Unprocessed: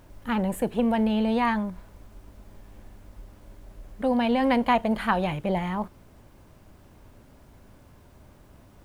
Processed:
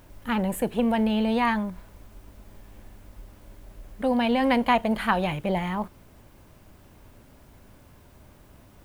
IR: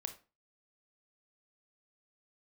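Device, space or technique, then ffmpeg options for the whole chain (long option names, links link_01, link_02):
presence and air boost: -af "equalizer=frequency=2600:width_type=o:width=1.5:gain=2.5,highshelf=frequency=9700:gain=7"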